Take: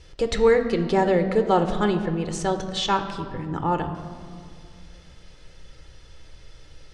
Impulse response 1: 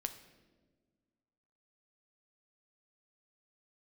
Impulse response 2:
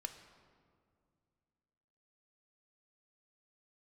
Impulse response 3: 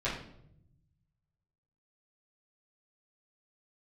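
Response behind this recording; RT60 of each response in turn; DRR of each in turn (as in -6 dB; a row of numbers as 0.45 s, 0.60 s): 2; 1.4 s, 2.3 s, 0.75 s; 7.5 dB, 6.5 dB, -11.0 dB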